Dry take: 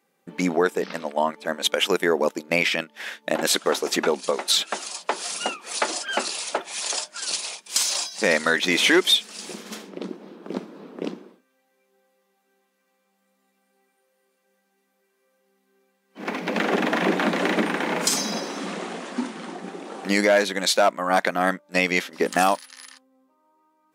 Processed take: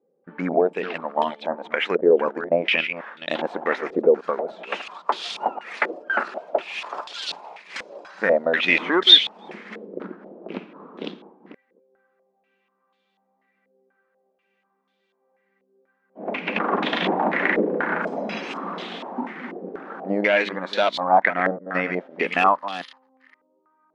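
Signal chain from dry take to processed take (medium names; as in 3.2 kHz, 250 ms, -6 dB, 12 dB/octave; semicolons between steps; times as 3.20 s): chunks repeated in reverse 251 ms, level -10.5 dB; step-sequenced low-pass 4.1 Hz 490–3500 Hz; trim -3.5 dB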